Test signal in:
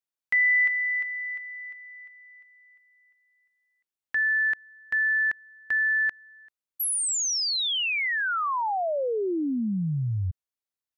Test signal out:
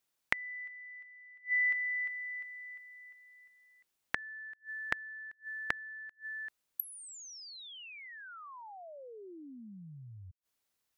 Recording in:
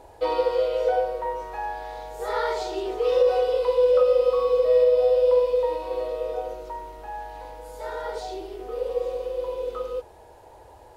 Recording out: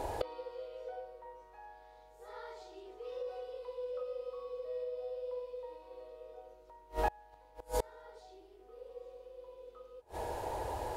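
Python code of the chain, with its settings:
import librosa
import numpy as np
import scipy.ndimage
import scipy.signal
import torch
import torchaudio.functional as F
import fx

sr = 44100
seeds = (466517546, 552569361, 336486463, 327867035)

y = fx.gate_flip(x, sr, shuts_db=-30.0, range_db=-32)
y = y * librosa.db_to_amplitude(10.0)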